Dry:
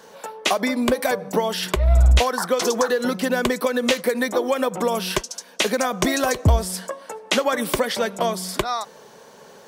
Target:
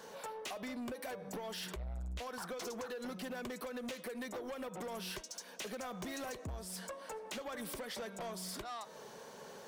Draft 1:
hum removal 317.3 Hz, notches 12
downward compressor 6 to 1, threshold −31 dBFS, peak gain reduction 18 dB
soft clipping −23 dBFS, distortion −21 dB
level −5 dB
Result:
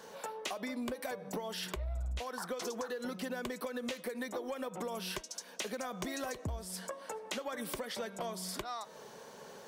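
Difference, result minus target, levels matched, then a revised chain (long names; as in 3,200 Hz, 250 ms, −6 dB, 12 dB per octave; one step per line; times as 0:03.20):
soft clipping: distortion −11 dB
hum removal 317.3 Hz, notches 12
downward compressor 6 to 1, threshold −31 dBFS, peak gain reduction 18 dB
soft clipping −33.5 dBFS, distortion −10 dB
level −5 dB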